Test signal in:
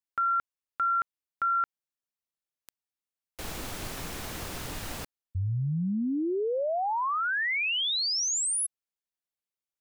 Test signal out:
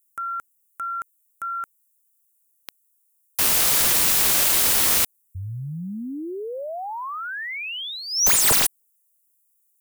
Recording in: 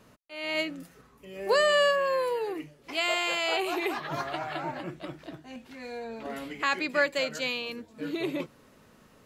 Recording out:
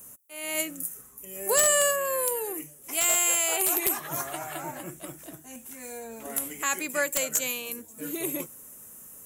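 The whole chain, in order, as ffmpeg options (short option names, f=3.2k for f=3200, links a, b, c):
-af "aexciter=amount=14.2:drive=9:freq=6.9k,aeval=exprs='(mod(3.16*val(0)+1,2)-1)/3.16':c=same,volume=-2.5dB"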